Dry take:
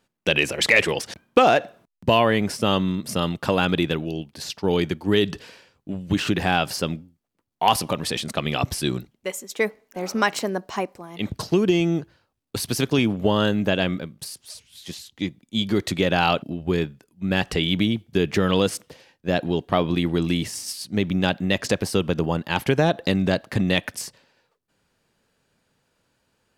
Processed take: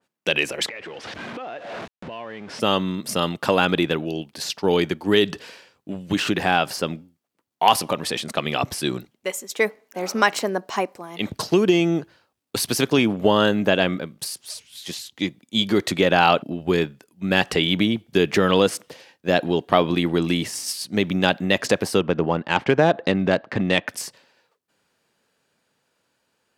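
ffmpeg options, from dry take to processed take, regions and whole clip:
-filter_complex "[0:a]asettb=1/sr,asplit=3[s0][s1][s2];[s0]atrim=end=0.684[s3];[s1]atrim=start=0.68:end=2.6,asetpts=PTS-STARTPTS,afade=t=in:d=0.004:c=qsin,afade=t=out:st=1.916:d=0.004:c=qsin,aeval=exprs='val(0)+0.5*0.0531*sgn(val(0))':c=same,lowpass=3200,acompressor=threshold=0.0282:ratio=8:attack=3.2:release=140:knee=1:detection=peak[s4];[s2]atrim=start=2.596[s5];[s3][s4]acrossfade=d=0.004:c1=hsin:c2=qsin[s6];[s6][s5]acrossfade=d=0.004:c1=qsin:c2=hsin,asettb=1/sr,asplit=3[s7][s8][s9];[s7]atrim=end=22.004[s10];[s8]atrim=start=22:end=23.89,asetpts=PTS-STARTPTS,afade=t=in:d=0.004:c=qsin,afade=t=out:st=1.886:d=0.004:c=qsin,equalizer=f=3800:w=1.5:g=-2.5,adynamicsmooth=sensitivity=4:basefreq=3400,lowpass=6200[s11];[s9]atrim=start=23.886[s12];[s10][s11]acrossfade=d=0.004:c1=hsin:c2=qsin[s13];[s13][s12]acrossfade=d=0.004:c1=qsin:c2=hsin,highpass=f=290:p=1,dynaudnorm=f=440:g=13:m=3.76,adynamicequalizer=threshold=0.0224:dfrequency=2300:dqfactor=0.7:tfrequency=2300:tqfactor=0.7:attack=5:release=100:ratio=0.375:range=3:mode=cutabove:tftype=highshelf"

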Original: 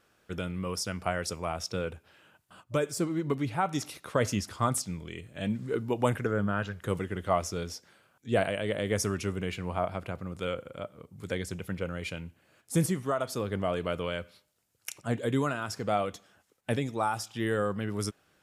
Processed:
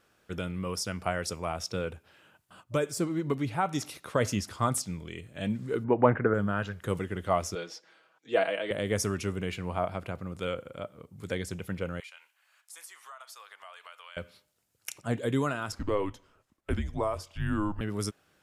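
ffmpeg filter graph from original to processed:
-filter_complex "[0:a]asettb=1/sr,asplit=3[s0][s1][s2];[s0]atrim=end=5.844[s3];[s1]atrim=start=5.84:end=6.34,asetpts=PTS-STARTPTS,afade=t=in:d=0.004:c=qsin,afade=t=out:st=0.496:d=0.004:c=qsin,lowpass=f=1900:w=0.5412,lowpass=f=1900:w=1.3066,lowshelf=f=99:g=-10.5,acontrast=48[s4];[s2]atrim=start=6.336[s5];[s3][s4]acrossfade=d=0.004:c1=hsin:c2=qsin[s6];[s6][s5]acrossfade=d=0.004:c1=qsin:c2=hsin,asettb=1/sr,asplit=3[s7][s8][s9];[s7]atrim=end=7.554[s10];[s8]atrim=start=7.55:end=8.71,asetpts=PTS-STARTPTS,afade=t=in:d=0.004:c=qsin,afade=t=out:st=1.156:d=0.004:c=qsin,highpass=190,acrossover=split=300 5800:gain=0.251 1 0.158[s11][s12][s13];[s11][s12][s13]amix=inputs=3:normalize=0,aecho=1:1:6.2:0.55,atrim=end_sample=51156[s14];[s9]atrim=start=8.706[s15];[s10][s14]acrossfade=d=0.004:c1=hsin:c2=qsin[s16];[s16][s15]acrossfade=d=0.004:c1=qsin:c2=hsin,asettb=1/sr,asplit=3[s17][s18][s19];[s17]atrim=end=12.004[s20];[s18]atrim=start=12:end=14.17,asetpts=PTS-STARTPTS,afade=t=in:d=0.004:c=qsin,afade=t=out:st=2.166:d=0.004:c=qsin,highpass=f=930:w=0.5412,highpass=f=930:w=1.3066,acompressor=threshold=0.00447:ratio=3:attack=3.2:release=140:knee=1:detection=peak[s21];[s19]atrim=start=14.166[s22];[s20][s21]acrossfade=d=0.004:c1=hsin:c2=qsin[s23];[s23][s22]acrossfade=d=0.004:c1=qsin:c2=hsin,asettb=1/sr,asplit=3[s24][s25][s26];[s24]atrim=end=15.724[s27];[s25]atrim=start=15.72:end=17.81,asetpts=PTS-STARTPTS,afade=t=in:d=0.004:c=qsin,afade=t=out:st=2.086:d=0.004:c=qsin,highshelf=f=2800:g=-9.5,afreqshift=-200[s28];[s26]atrim=start=17.806[s29];[s27][s28]acrossfade=d=0.004:c1=hsin:c2=qsin[s30];[s30][s29]acrossfade=d=0.004:c1=qsin:c2=hsin"

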